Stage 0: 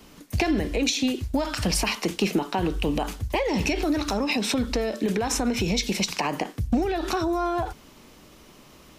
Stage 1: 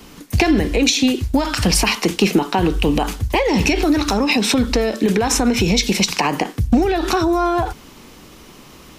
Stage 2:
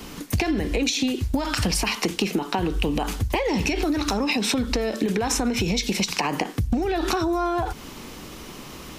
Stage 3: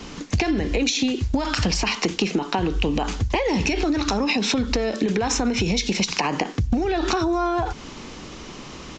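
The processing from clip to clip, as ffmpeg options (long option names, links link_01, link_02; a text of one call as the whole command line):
ffmpeg -i in.wav -af "equalizer=frequency=610:width=7.5:gain=-5.5,volume=8.5dB" out.wav
ffmpeg -i in.wav -af "acompressor=threshold=-24dB:ratio=6,volume=3dB" out.wav
ffmpeg -i in.wav -af "aresample=16000,aresample=44100,volume=1.5dB" out.wav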